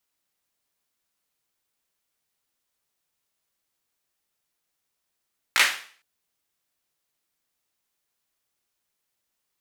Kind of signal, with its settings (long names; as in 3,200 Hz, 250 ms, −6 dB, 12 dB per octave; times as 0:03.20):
synth clap length 0.46 s, bursts 3, apart 17 ms, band 2,000 Hz, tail 0.46 s